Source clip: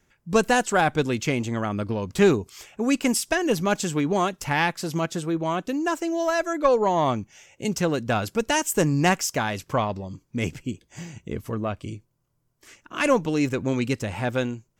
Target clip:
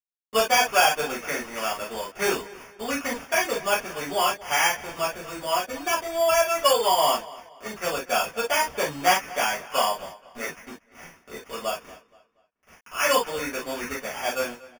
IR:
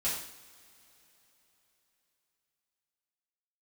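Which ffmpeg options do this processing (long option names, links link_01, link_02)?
-filter_complex "[0:a]highpass=660,acrusher=bits=6:mix=0:aa=0.000001,acrossover=split=2800[link_01][link_02];[link_02]acompressor=threshold=-47dB:ratio=4:attack=1:release=60[link_03];[link_01][link_03]amix=inputs=2:normalize=0,highshelf=frequency=10000:gain=-10,acrusher=samples=11:mix=1:aa=0.000001,asplit=2[link_04][link_05];[link_05]adelay=237,lowpass=frequency=4800:poles=1,volume=-19dB,asplit=2[link_06][link_07];[link_07]adelay=237,lowpass=frequency=4800:poles=1,volume=0.36,asplit=2[link_08][link_09];[link_09]adelay=237,lowpass=frequency=4800:poles=1,volume=0.36[link_10];[link_04][link_06][link_08][link_10]amix=inputs=4:normalize=0[link_11];[1:a]atrim=start_sample=2205,atrim=end_sample=3087[link_12];[link_11][link_12]afir=irnorm=-1:irlink=0"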